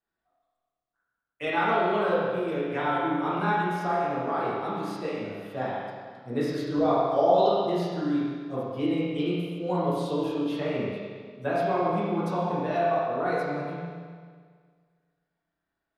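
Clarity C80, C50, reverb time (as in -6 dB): -0.5 dB, -3.0 dB, 1.8 s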